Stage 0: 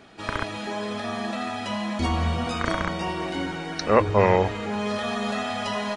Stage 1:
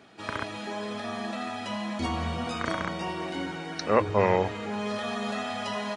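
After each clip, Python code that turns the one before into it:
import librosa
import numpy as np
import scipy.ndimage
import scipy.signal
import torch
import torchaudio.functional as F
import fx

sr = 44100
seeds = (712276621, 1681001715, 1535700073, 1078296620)

y = scipy.signal.sosfilt(scipy.signal.butter(2, 95.0, 'highpass', fs=sr, output='sos'), x)
y = y * librosa.db_to_amplitude(-4.0)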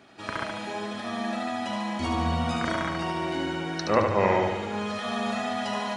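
y = fx.notch(x, sr, hz=450.0, q=12.0)
y = fx.echo_feedback(y, sr, ms=73, feedback_pct=56, wet_db=-4.5)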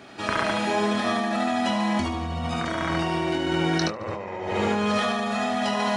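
y = fx.over_compress(x, sr, threshold_db=-32.0, ratio=-1.0)
y = fx.doubler(y, sr, ms=24.0, db=-9.5)
y = y * librosa.db_to_amplitude(5.0)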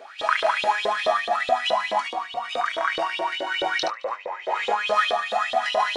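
y = fx.filter_lfo_highpass(x, sr, shape='saw_up', hz=4.7, low_hz=480.0, high_hz=3800.0, q=7.5)
y = fx.low_shelf(y, sr, hz=230.0, db=3.0)
y = y * librosa.db_to_amplitude(-4.0)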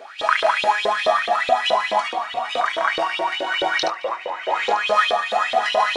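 y = fx.echo_feedback(x, sr, ms=894, feedback_pct=28, wet_db=-14.0)
y = y * librosa.db_to_amplitude(3.5)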